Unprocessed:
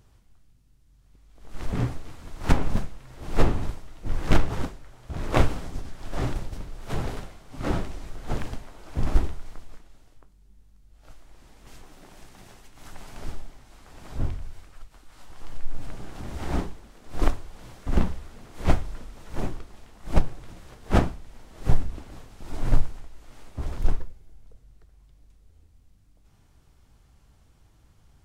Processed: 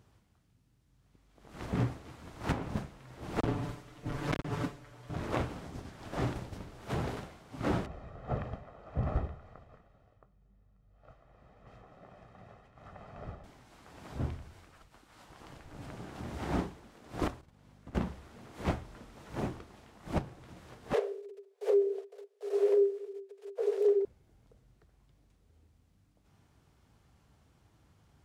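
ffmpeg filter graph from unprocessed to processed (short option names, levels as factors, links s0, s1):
-filter_complex "[0:a]asettb=1/sr,asplit=3[s0][s1][s2];[s0]atrim=end=3.404[s3];[s1]atrim=start=3.4:end=5.16,asetpts=PTS-STARTPTS,afade=t=in:d=0.004:c=qsin,afade=t=out:st=1.756:d=0.004:c=qsin,bandreject=f=810:w=11,aecho=1:1:6.9:0.8,atrim=end_sample=77616,asoftclip=type=hard:threshold=0.282[s4];[s2]atrim=start=5.156[s5];[s3][s4]acrossfade=d=0.004:c1=hsin:c2=qsin[s6];[s6][s5]acrossfade=d=0.004:c1=qsin:c2=hsin,asettb=1/sr,asplit=3[s7][s8][s9];[s7]atrim=end=7.864[s10];[s8]atrim=start=7.86:end=13.44,asetpts=PTS-STARTPTS,afade=t=in:d=0.004:c=qsin,afade=t=out:st=5.576:d=0.004:c=qsin,lowpass=1300,aemphasis=mode=production:type=75fm,aecho=1:1:1.6:0.58,atrim=end_sample=246078[s11];[s9]atrim=start=13.436[s12];[s10][s11]acrossfade=d=0.004:c1=hsin:c2=qsin[s13];[s13][s12]acrossfade=d=0.004:c1=qsin:c2=hsin,asettb=1/sr,asplit=3[s14][s15][s16];[s14]atrim=end=17.414[s17];[s15]atrim=start=17.41:end=17.95,asetpts=PTS-STARTPTS,afade=t=in:d=0.004:c=qsin,afade=t=out:st=0.536:d=0.004:c=qsin,agate=range=0.224:threshold=0.0158:ratio=16:release=100:detection=peak,aeval=exprs='val(0)+0.00251*(sin(2*PI*50*n/s)+sin(2*PI*2*50*n/s)/2+sin(2*PI*3*50*n/s)/3+sin(2*PI*4*50*n/s)/4+sin(2*PI*5*50*n/s)/5)':c=same,acompressor=threshold=0.0141:ratio=8:attack=3.2:release=140:knee=1:detection=peak[s18];[s16]atrim=start=17.946[s19];[s17][s18]acrossfade=d=0.004:c1=hsin:c2=qsin[s20];[s20][s19]acrossfade=d=0.004:c1=qsin:c2=hsin,asettb=1/sr,asplit=3[s21][s22][s23];[s21]atrim=end=20.934[s24];[s22]atrim=start=20.93:end=24.05,asetpts=PTS-STARTPTS,afade=t=in:d=0.004:c=qsin,afade=t=out:st=3.116:d=0.004:c=qsin,agate=range=0.0708:threshold=0.01:ratio=16:release=100:detection=peak,equalizer=f=690:w=0.62:g=-10,afreqshift=390[s25];[s23]atrim=start=24.046[s26];[s24][s25]acrossfade=d=0.004:c1=hsin:c2=qsin[s27];[s27][s26]acrossfade=d=0.004:c1=qsin:c2=hsin,highpass=87,highshelf=f=4200:g=-6,alimiter=limit=0.141:level=0:latency=1:release=498,volume=0.794"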